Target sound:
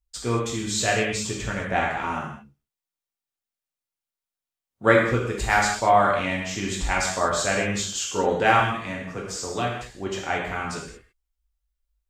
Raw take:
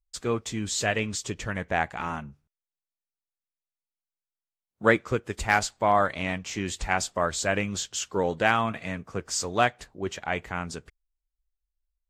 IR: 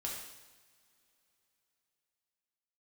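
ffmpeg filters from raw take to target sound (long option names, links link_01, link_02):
-filter_complex "[0:a]asettb=1/sr,asplit=3[link_01][link_02][link_03];[link_01]atrim=end=8.594[link_04];[link_02]atrim=start=8.59:end=9.87,asetpts=PTS-STARTPTS,afade=type=in:duration=0.004:curve=qsin,afade=type=out:start_time=1.276:duration=0.004:curve=qsin,acrossover=split=120|470|1500[link_05][link_06][link_07][link_08];[link_05]acompressor=threshold=-44dB:ratio=4[link_09];[link_06]acompressor=threshold=-33dB:ratio=4[link_10];[link_07]acompressor=threshold=-35dB:ratio=4[link_11];[link_08]acompressor=threshold=-35dB:ratio=4[link_12];[link_09][link_10][link_11][link_12]amix=inputs=4:normalize=0[link_13];[link_03]atrim=start=9.866[link_14];[link_04][link_13]acrossfade=duration=0.004:curve1=hsin:curve2=qsin[link_15];[link_15][link_14]acrossfade=duration=0.004:curve1=qsin:curve2=hsin[link_16];[1:a]atrim=start_sample=2205,afade=type=out:start_time=0.28:duration=0.01,atrim=end_sample=12789[link_17];[link_16][link_17]afir=irnorm=-1:irlink=0,volume=3.5dB"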